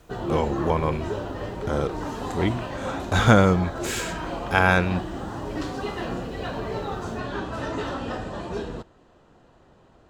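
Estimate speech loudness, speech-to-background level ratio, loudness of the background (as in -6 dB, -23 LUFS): -23.5 LUFS, 8.0 dB, -31.5 LUFS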